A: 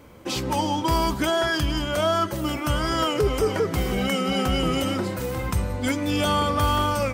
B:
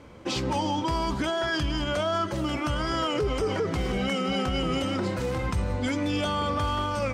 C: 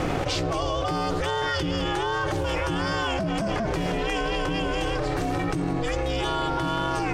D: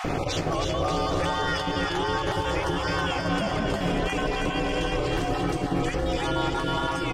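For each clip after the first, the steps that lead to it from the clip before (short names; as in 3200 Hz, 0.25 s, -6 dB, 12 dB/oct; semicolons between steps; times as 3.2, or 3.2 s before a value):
LPF 6500 Hz 12 dB/oct; limiter -19 dBFS, peak gain reduction 7 dB
ring modulator 230 Hz; fast leveller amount 100%
random spectral dropouts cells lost 22%; on a send: bouncing-ball echo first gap 0.32 s, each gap 0.85×, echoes 5; on the sum: gain -1 dB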